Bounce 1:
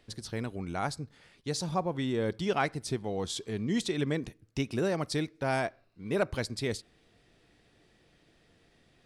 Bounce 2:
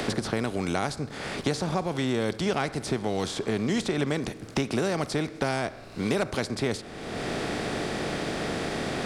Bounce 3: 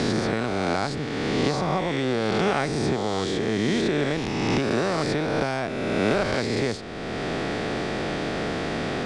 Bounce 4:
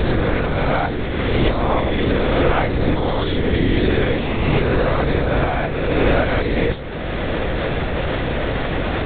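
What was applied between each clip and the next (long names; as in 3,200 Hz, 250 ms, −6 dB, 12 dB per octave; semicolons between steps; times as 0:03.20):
compressor on every frequency bin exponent 0.6; multiband upward and downward compressor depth 100%
peak hold with a rise ahead of every peak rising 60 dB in 2.30 s; high-frequency loss of the air 73 metres
linear-prediction vocoder at 8 kHz whisper; on a send at −14.5 dB: convolution reverb RT60 3.6 s, pre-delay 3 ms; on the sum: level +6.5 dB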